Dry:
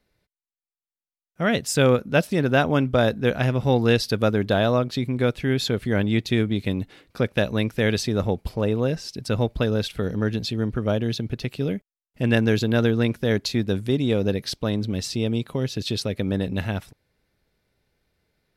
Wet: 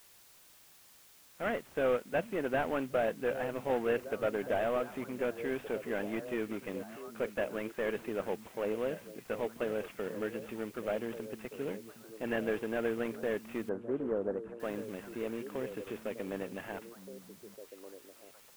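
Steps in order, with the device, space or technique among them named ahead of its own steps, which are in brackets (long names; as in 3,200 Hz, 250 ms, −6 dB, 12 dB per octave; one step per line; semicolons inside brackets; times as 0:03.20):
army field radio (band-pass filter 350–2,900 Hz; variable-slope delta modulation 16 kbit/s; white noise bed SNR 23 dB)
0:13.69–0:14.60: Butterworth low-pass 1,500 Hz 36 dB per octave
echo through a band-pass that steps 761 ms, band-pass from 160 Hz, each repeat 1.4 octaves, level −7 dB
level −7 dB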